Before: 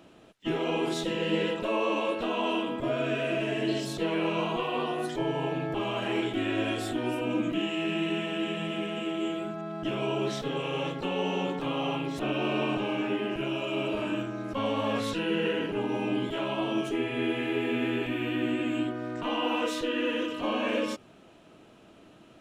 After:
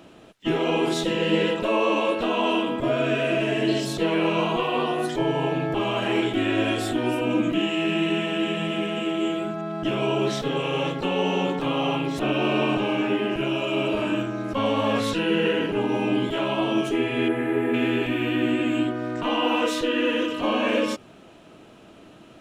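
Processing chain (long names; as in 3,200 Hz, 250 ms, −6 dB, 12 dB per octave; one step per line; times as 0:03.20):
0:17.28–0:17.74: flat-topped bell 4,100 Hz −13 dB
level +6 dB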